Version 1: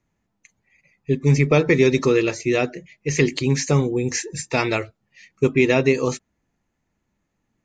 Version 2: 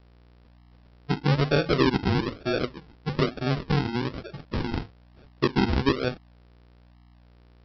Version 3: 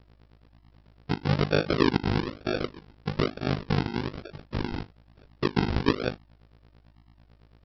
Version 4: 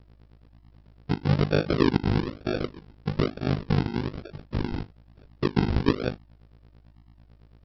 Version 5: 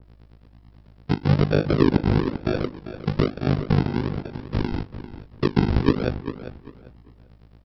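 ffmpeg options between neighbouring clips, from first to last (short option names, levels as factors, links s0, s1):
-af "aeval=exprs='val(0)+0.00447*(sin(2*PI*60*n/s)+sin(2*PI*2*60*n/s)/2+sin(2*PI*3*60*n/s)/3+sin(2*PI*4*60*n/s)/4+sin(2*PI*5*60*n/s)/5)':c=same,aresample=11025,acrusher=samples=15:mix=1:aa=0.000001:lfo=1:lforange=9:lforate=1.1,aresample=44100,volume=0.501"
-af "tremolo=f=51:d=0.974,volume=1.26"
-af "lowshelf=f=430:g=6,volume=0.75"
-filter_complex "[0:a]asplit=2[s0][s1];[s1]adelay=395,lowpass=f=2900:p=1,volume=0.251,asplit=2[s2][s3];[s3]adelay=395,lowpass=f=2900:p=1,volume=0.25,asplit=2[s4][s5];[s5]adelay=395,lowpass=f=2900:p=1,volume=0.25[s6];[s0][s2][s4][s6]amix=inputs=4:normalize=0,acrossover=split=500[s7][s8];[s8]acompressor=threshold=0.0316:ratio=2[s9];[s7][s9]amix=inputs=2:normalize=0,adynamicequalizer=threshold=0.00447:dfrequency=2200:dqfactor=0.7:tfrequency=2200:tqfactor=0.7:attack=5:release=100:ratio=0.375:range=2:mode=cutabove:tftype=highshelf,volume=1.58"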